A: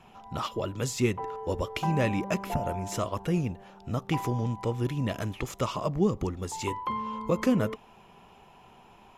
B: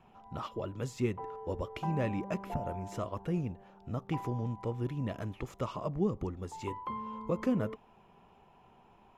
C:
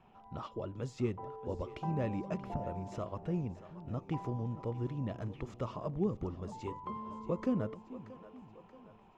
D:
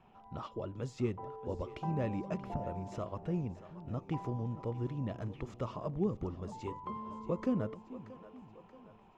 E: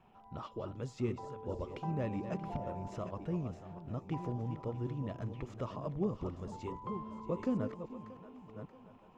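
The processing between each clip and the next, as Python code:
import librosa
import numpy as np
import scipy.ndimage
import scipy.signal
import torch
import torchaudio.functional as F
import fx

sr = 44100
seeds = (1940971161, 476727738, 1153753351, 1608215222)

y1 = fx.high_shelf(x, sr, hz=2600.0, db=-11.0)
y1 = y1 * librosa.db_to_amplitude(-5.5)
y2 = scipy.signal.sosfilt(scipy.signal.butter(2, 5700.0, 'lowpass', fs=sr, output='sos'), y1)
y2 = fx.dynamic_eq(y2, sr, hz=2200.0, q=0.75, threshold_db=-53.0, ratio=4.0, max_db=-5)
y2 = fx.echo_split(y2, sr, split_hz=330.0, low_ms=434, high_ms=630, feedback_pct=52, wet_db=-15)
y2 = y2 * librosa.db_to_amplitude(-2.0)
y3 = y2
y4 = fx.reverse_delay(y3, sr, ms=541, wet_db=-9.0)
y4 = y4 * librosa.db_to_amplitude(-1.5)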